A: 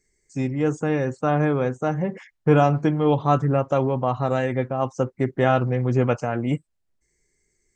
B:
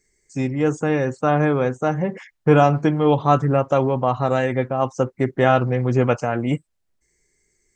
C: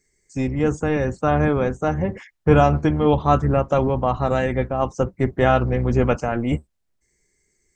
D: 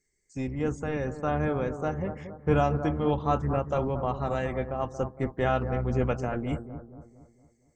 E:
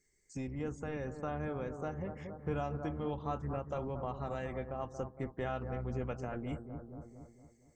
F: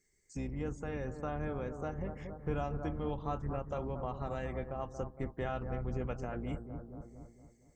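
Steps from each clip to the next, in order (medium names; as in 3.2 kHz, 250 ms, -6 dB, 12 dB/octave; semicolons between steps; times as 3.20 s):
bass shelf 350 Hz -3 dB; trim +4 dB
octave divider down 1 oct, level -4 dB; trim -1 dB
bucket-brigade echo 230 ms, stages 2048, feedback 46%, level -10 dB; trim -9 dB
compression 2:1, threshold -45 dBFS, peak gain reduction 14.5 dB; trim +1 dB
octave divider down 2 oct, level -3 dB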